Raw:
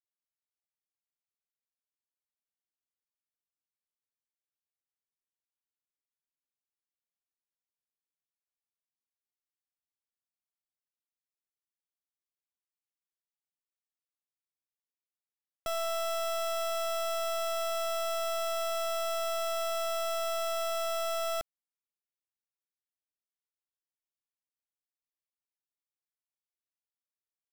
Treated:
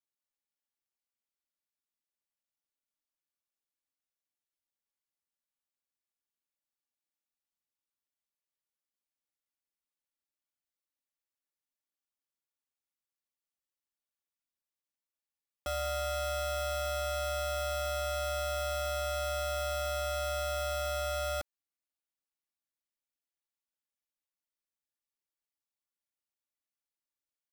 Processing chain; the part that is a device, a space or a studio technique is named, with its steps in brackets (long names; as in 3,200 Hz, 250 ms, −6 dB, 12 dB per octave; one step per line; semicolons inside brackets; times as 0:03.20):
ring-modulated robot voice (ring modulation 70 Hz; comb filter 3.5 ms, depth 60%)